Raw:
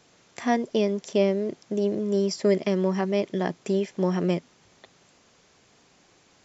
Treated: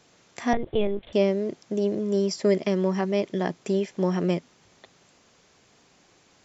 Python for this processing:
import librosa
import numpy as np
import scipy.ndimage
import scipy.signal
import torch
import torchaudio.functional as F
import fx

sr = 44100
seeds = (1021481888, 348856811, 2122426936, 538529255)

y = fx.lpc_vocoder(x, sr, seeds[0], excitation='pitch_kept', order=10, at=(0.53, 1.13))